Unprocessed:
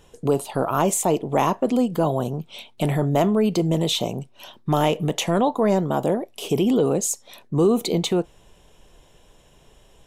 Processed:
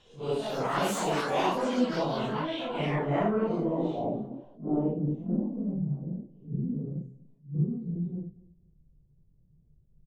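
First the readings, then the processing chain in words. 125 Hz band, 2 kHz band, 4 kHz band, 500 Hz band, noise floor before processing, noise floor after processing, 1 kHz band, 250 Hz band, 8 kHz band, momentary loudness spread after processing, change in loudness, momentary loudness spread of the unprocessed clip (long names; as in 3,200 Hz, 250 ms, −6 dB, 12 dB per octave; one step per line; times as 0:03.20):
−7.0 dB, −3.0 dB, −10.5 dB, −9.5 dB, −54 dBFS, −63 dBFS, −7.5 dB, −7.5 dB, below −15 dB, 10 LU, −8.5 dB, 10 LU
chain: random phases in long frames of 200 ms
high-shelf EQ 4,700 Hz +8.5 dB
hum removal 65.31 Hz, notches 4
low-pass filter sweep 3,700 Hz → 150 Hz, 0:02.43–0:05.70
on a send: repeating echo 241 ms, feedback 25%, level −21.5 dB
on the sum: delay with pitch and tempo change per echo 261 ms, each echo +7 semitones, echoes 3, each echo −6 dB
level that may rise only so fast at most 200 dB per second
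level −8.5 dB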